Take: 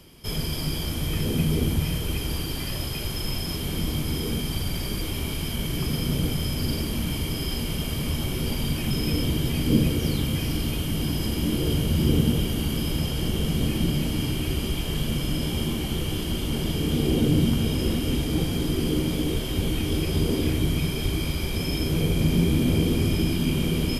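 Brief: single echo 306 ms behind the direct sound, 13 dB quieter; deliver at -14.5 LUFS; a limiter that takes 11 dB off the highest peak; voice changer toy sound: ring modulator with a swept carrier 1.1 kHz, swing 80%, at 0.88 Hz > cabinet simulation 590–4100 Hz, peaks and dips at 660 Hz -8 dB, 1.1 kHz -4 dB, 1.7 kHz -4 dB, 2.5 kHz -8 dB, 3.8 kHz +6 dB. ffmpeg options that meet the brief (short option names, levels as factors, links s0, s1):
-af "alimiter=limit=0.133:level=0:latency=1,aecho=1:1:306:0.224,aeval=exprs='val(0)*sin(2*PI*1100*n/s+1100*0.8/0.88*sin(2*PI*0.88*n/s))':c=same,highpass=590,equalizer=f=660:t=q:w=4:g=-8,equalizer=f=1100:t=q:w=4:g=-4,equalizer=f=1700:t=q:w=4:g=-4,equalizer=f=2500:t=q:w=4:g=-8,equalizer=f=3800:t=q:w=4:g=6,lowpass=f=4100:w=0.5412,lowpass=f=4100:w=1.3066,volume=8.41"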